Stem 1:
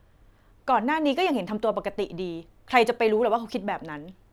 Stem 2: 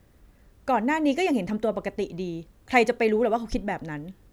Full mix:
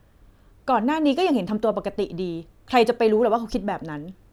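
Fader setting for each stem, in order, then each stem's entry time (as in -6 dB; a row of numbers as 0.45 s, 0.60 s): +0.5 dB, -4.0 dB; 0.00 s, 0.00 s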